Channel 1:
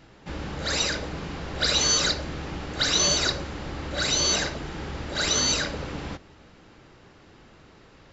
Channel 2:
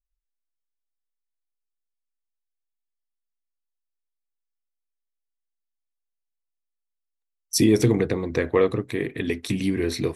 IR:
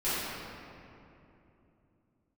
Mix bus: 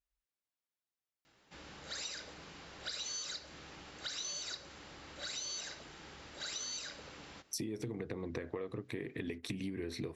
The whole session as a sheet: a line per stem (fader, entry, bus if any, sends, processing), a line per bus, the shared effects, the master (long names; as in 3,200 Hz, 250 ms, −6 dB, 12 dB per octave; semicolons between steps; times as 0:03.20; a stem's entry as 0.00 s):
−15.5 dB, 1.25 s, no send, spectral tilt +2.5 dB per octave
+1.5 dB, 0.00 s, no send, high-pass filter 63 Hz; downward compressor, threshold −23 dBFS, peak gain reduction 10 dB; high-shelf EQ 6,600 Hz −9 dB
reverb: not used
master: downward compressor 4 to 1, threshold −40 dBFS, peak gain reduction 16.5 dB